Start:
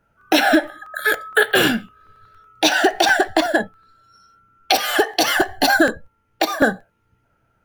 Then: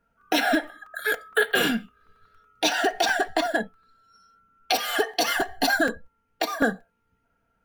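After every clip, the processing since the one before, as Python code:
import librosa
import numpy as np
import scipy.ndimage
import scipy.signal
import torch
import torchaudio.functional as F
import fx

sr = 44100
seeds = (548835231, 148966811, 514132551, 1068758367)

y = x + 0.52 * np.pad(x, (int(4.3 * sr / 1000.0), 0))[:len(x)]
y = y * 10.0 ** (-7.5 / 20.0)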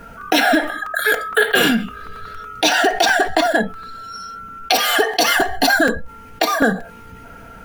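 y = fx.env_flatten(x, sr, amount_pct=50)
y = y * 10.0 ** (5.5 / 20.0)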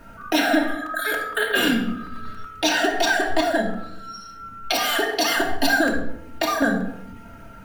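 y = fx.room_shoebox(x, sr, seeds[0], volume_m3=2200.0, walls='furnished', distance_m=2.7)
y = y * 10.0 ** (-7.5 / 20.0)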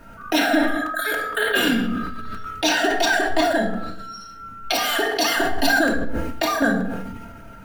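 y = fx.sustainer(x, sr, db_per_s=34.0)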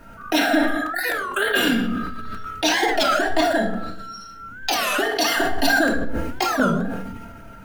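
y = fx.record_warp(x, sr, rpm=33.33, depth_cents=250.0)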